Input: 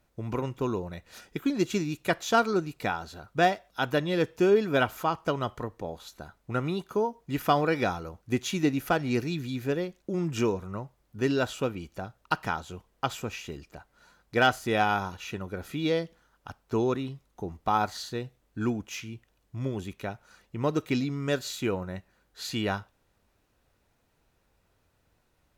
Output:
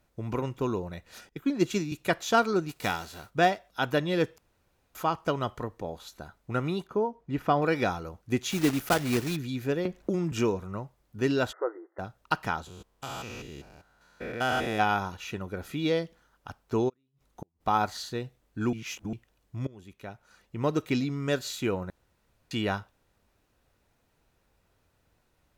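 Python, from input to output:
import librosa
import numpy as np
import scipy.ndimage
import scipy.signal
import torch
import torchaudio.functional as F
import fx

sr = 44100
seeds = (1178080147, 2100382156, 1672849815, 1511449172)

y = fx.band_widen(x, sr, depth_pct=100, at=(1.29, 1.92))
y = fx.envelope_flatten(y, sr, power=0.6, at=(2.68, 3.29), fade=0.02)
y = fx.lowpass(y, sr, hz=1400.0, slope=6, at=(6.87, 7.62))
y = fx.block_float(y, sr, bits=3, at=(8.49, 9.35), fade=0.02)
y = fx.band_squash(y, sr, depth_pct=100, at=(9.85, 10.32))
y = fx.brickwall_bandpass(y, sr, low_hz=310.0, high_hz=2100.0, at=(11.51, 11.98), fade=0.02)
y = fx.spec_steps(y, sr, hold_ms=200, at=(12.66, 14.78), fade=0.02)
y = fx.gate_flip(y, sr, shuts_db=-29.0, range_db=-41, at=(16.88, 17.6), fade=0.02)
y = fx.edit(y, sr, fx.room_tone_fill(start_s=4.38, length_s=0.57),
    fx.reverse_span(start_s=18.73, length_s=0.4),
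    fx.fade_in_from(start_s=19.67, length_s=0.98, floor_db=-21.5),
    fx.room_tone_fill(start_s=21.9, length_s=0.61), tone=tone)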